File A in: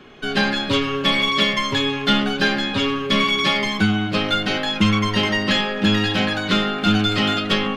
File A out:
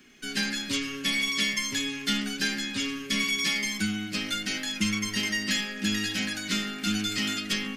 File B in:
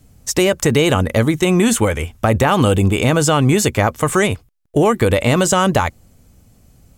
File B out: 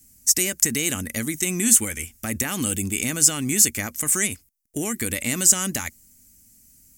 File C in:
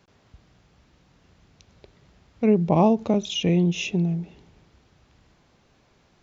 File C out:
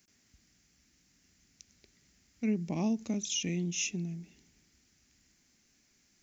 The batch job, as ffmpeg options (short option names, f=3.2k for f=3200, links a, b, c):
-af "aexciter=amount=9.7:drive=5:freq=5.4k,equalizer=f=125:t=o:w=1:g=-5,equalizer=f=250:t=o:w=1:g=8,equalizer=f=500:t=o:w=1:g=-7,equalizer=f=1k:t=o:w=1:g=-8,equalizer=f=2k:t=o:w=1:g=9,equalizer=f=4k:t=o:w=1:g=5,volume=-14dB"